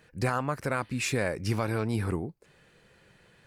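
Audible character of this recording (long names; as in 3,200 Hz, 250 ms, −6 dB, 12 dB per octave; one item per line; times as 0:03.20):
background noise floor −62 dBFS
spectral slope −5.5 dB per octave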